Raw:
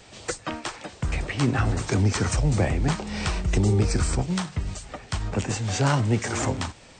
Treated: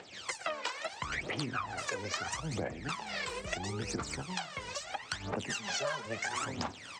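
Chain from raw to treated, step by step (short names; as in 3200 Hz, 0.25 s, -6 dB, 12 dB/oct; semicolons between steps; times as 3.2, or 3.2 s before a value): air absorption 53 m; on a send: feedback echo 0.12 s, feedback 43%, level -20 dB; on the sum: wow and flutter 120 cents; phaser 0.75 Hz, delay 2.1 ms, feedback 78%; AGC gain up to 10 dB; weighting filter A; 3.24–3.46 spectral gain 530–7100 Hz -8 dB; 5.49–6.06 comb 5 ms, depth 90%; compressor 6:1, threshold -29 dBFS, peak gain reduction 18 dB; gain -4.5 dB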